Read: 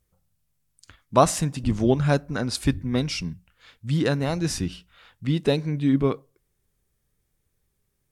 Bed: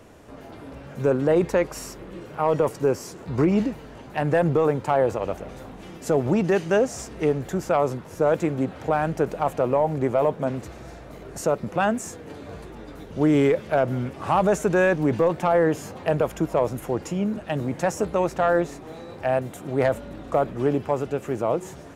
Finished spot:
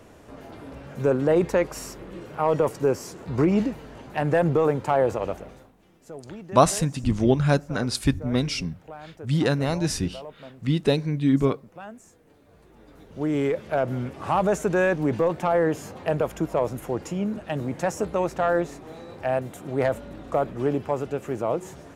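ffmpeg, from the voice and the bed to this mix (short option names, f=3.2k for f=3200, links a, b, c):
-filter_complex "[0:a]adelay=5400,volume=0.5dB[a];[1:a]volume=16dB,afade=t=out:st=5.25:d=0.47:silence=0.125893,afade=t=in:st=12.51:d=1.44:silence=0.149624[b];[a][b]amix=inputs=2:normalize=0"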